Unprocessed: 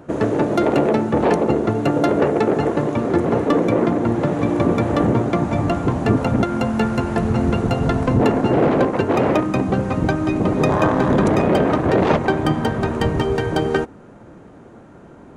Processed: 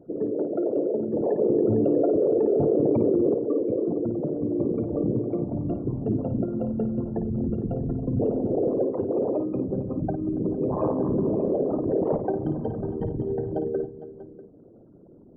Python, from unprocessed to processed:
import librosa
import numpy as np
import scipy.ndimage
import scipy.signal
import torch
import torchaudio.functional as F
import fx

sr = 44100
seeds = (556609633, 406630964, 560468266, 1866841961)

y = fx.envelope_sharpen(x, sr, power=3.0)
y = fx.peak_eq(y, sr, hz=67.0, db=-9.5, octaves=0.63)
y = fx.echo_multitap(y, sr, ms=(54, 281, 455, 643), db=(-9.0, -19.5, -17.5, -19.5))
y = fx.env_flatten(y, sr, amount_pct=100, at=(1.38, 3.33), fade=0.02)
y = y * 10.0 ** (-8.5 / 20.0)